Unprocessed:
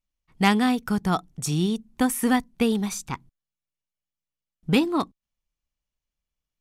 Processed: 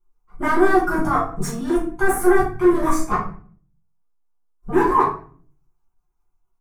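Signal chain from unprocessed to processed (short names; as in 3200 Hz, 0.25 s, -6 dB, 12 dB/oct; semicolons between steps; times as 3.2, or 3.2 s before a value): formant-preserving pitch shift +7.5 st; in parallel at -2 dB: negative-ratio compressor -28 dBFS, ratio -0.5; on the sum: fixed phaser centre 360 Hz, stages 8; overloaded stage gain 21 dB; LFO notch square 5.3 Hz 310–4400 Hz; resonant high shelf 2300 Hz -10.5 dB, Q 3; doubler 19 ms -10.5 dB; shoebox room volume 44 m³, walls mixed, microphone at 1.2 m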